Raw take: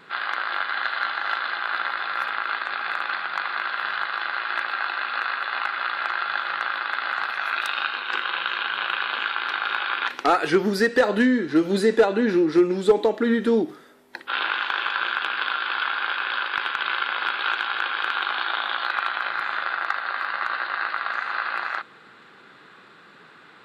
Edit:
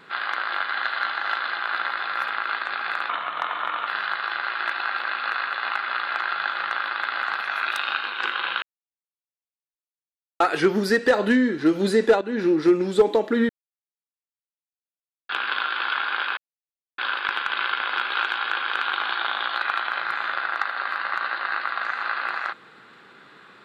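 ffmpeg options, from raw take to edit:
-filter_complex "[0:a]asplit=11[a][b][c][d][e][f][g][h][i][j][k];[a]atrim=end=3.094[l];[b]atrim=start=3.09:end=3.77,asetpts=PTS-STARTPTS,asetrate=38367,aresample=44100[m];[c]atrim=start=3.766:end=4.632[n];[d]atrim=start=4.628:end=4.972,asetpts=PTS-STARTPTS,areverse[o];[e]atrim=start=4.968:end=8.52,asetpts=PTS-STARTPTS,afade=t=out:st=3.548:d=0.004:c=hsin[p];[f]atrim=start=8.52:end=10.3,asetpts=PTS-STARTPTS,volume=0[q];[g]atrim=start=10.3:end=12.11,asetpts=PTS-STARTPTS,afade=t=in:d=0.004:c=hsin,afade=t=out:st=1.806:d=0.004:c=hsin:silence=0.199526[r];[h]atrim=start=12.11:end=13.39,asetpts=PTS-STARTPTS,afade=t=in:d=0.3:silence=0.199526,afade=t=out:st=1.276:d=0.004:c=hsin[s];[i]atrim=start=13.39:end=15.19,asetpts=PTS-STARTPTS,volume=0[t];[j]atrim=start=15.19:end=16.27,asetpts=PTS-STARTPTS,afade=t=in:d=0.004:c=hsin,afade=t=out:st=1.076:d=0.004:c=hsin,apad=pad_dur=0.61[u];[k]atrim=start=16.27,asetpts=PTS-STARTPTS,afade=t=in:d=0.004:c=hsin[v];[l][m]acrossfade=d=0.004:c1=hsin:c2=hsin[w];[w][n]acrossfade=d=0.004:c1=hsin:c2=hsin[x];[x][o]acrossfade=d=0.004:c1=hsin:c2=hsin[y];[p][q][r][s][t][u][v]concat=n=7:v=0:a=1[z];[y][z]acrossfade=d=0.004:c1=hsin:c2=hsin"

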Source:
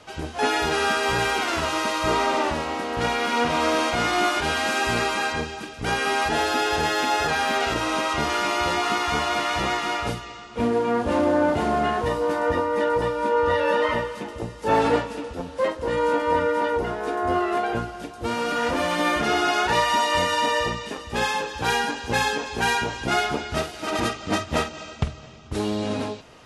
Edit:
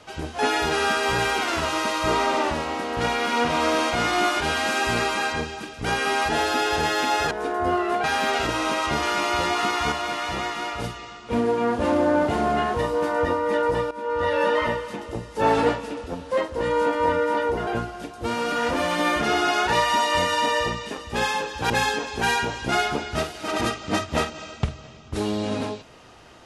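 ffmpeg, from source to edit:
-filter_complex "[0:a]asplit=8[a][b][c][d][e][f][g][h];[a]atrim=end=7.312[i];[b]atrim=start=16.938:end=17.672[j];[c]atrim=start=7.308:end=9.192[k];[d]atrim=start=9.188:end=10.112,asetpts=PTS-STARTPTS,volume=-3.5dB[l];[e]atrim=start=10.108:end=13.18,asetpts=PTS-STARTPTS,afade=t=out:st=3.068:d=0.004:c=hsin:silence=0.16788[m];[f]atrim=start=13.18:end=16.942,asetpts=PTS-STARTPTS,afade=t=in:d=0.45:silence=0.16788[n];[g]atrim=start=17.668:end=21.702[o];[h]atrim=start=22.088[p];[i][j]acrossfade=d=0.004:c1=hsin:c2=hsin[q];[q][k]acrossfade=d=0.004:c1=hsin:c2=hsin[r];[r][l]acrossfade=d=0.004:c1=hsin:c2=hsin[s];[m][n]concat=n=2:v=0:a=1[t];[s][t]acrossfade=d=0.004:c1=hsin:c2=hsin[u];[u][o]acrossfade=d=0.004:c1=hsin:c2=hsin[v];[v][p]acrossfade=d=0.004:c1=hsin:c2=hsin"

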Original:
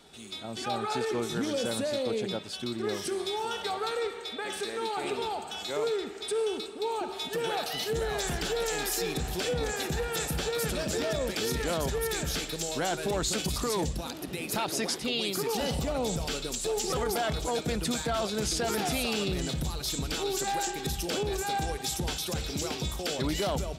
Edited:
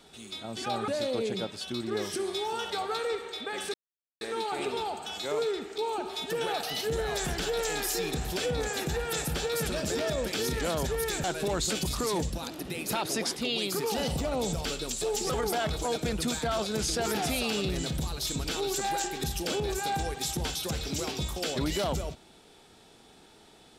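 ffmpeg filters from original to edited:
-filter_complex "[0:a]asplit=5[a][b][c][d][e];[a]atrim=end=0.882[f];[b]atrim=start=1.798:end=4.66,asetpts=PTS-STARTPTS,afade=t=out:st=2.858:d=0.004:c=hsin,apad=pad_dur=0.47[g];[c]atrim=start=4.66:end=6.232,asetpts=PTS-STARTPTS,afade=t=in:d=0.004:c=hsin[h];[d]atrim=start=6.808:end=12.272[i];[e]atrim=start=12.868[j];[g][h]concat=n=2:v=0:a=1[k];[f][k]acrossfade=d=0.004:c1=hsin:c2=hsin[l];[l][i]acrossfade=d=0.004:c1=hsin:c2=hsin[m];[m][j]acrossfade=d=0.004:c1=hsin:c2=hsin"

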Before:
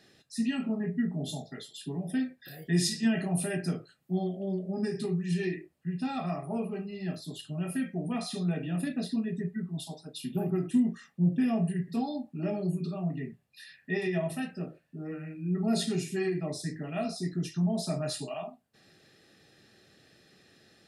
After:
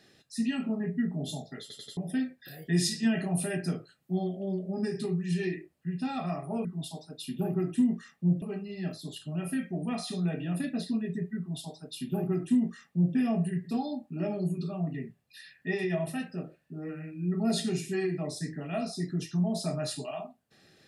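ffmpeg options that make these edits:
-filter_complex "[0:a]asplit=7[a][b][c][d][e][f][g];[a]atrim=end=1.702[h];[b]atrim=start=1.608:end=1.702[i];[c]atrim=start=1.608:end=1.702[j];[d]atrim=start=1.608:end=1.702[k];[e]atrim=start=1.968:end=6.652[l];[f]atrim=start=9.608:end=11.382[m];[g]atrim=start=6.648[n];[h][i]acrossfade=d=0.004:c1=hsin:c2=hsin[o];[o][j]acrossfade=d=0.004:c1=hsin:c2=hsin[p];[p][k]acrossfade=d=0.004:c1=hsin:c2=hsin[q];[q][l]acrossfade=d=0.004:c1=hsin:c2=hsin[r];[r][m]acrossfade=d=0.004:c1=hsin:c2=hsin[s];[s][n]acrossfade=d=0.004:c1=hsin:c2=hsin"

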